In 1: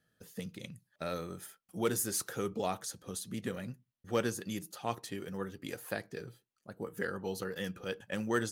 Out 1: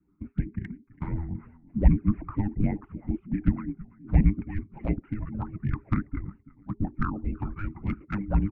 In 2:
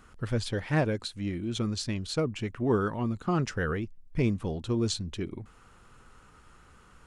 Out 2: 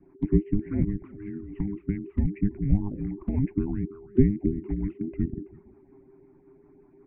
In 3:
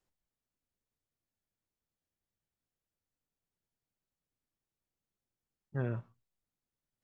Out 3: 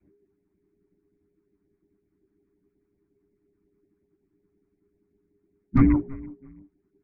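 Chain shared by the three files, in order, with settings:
rattling part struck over -31 dBFS, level -37 dBFS; harmonic-percussive split harmonic -9 dB; steep low-pass 2800 Hz 96 dB/oct; feedback echo 0.33 s, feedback 23%, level -20.5 dB; harmonic-percussive split harmonic -6 dB; envelope flanger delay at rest 9.1 ms, full sweep at -33 dBFS; LFO notch sine 5.5 Hz 760–1700 Hz; tilt shelf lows +9 dB; frequency shift -410 Hz; normalise peaks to -6 dBFS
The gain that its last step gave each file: +14.0, +3.5, +25.0 dB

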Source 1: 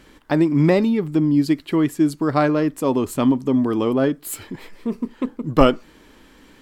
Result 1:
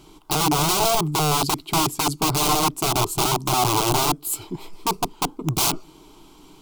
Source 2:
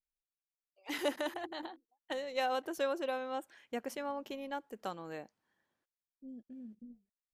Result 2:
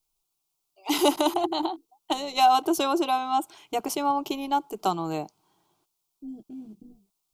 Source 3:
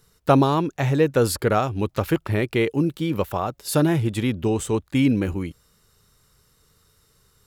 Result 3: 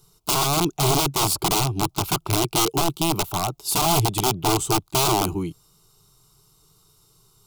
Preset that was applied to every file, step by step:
wrapped overs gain 17 dB; fixed phaser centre 350 Hz, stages 8; normalise peaks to -6 dBFS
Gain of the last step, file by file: +4.5, +17.5, +4.5 dB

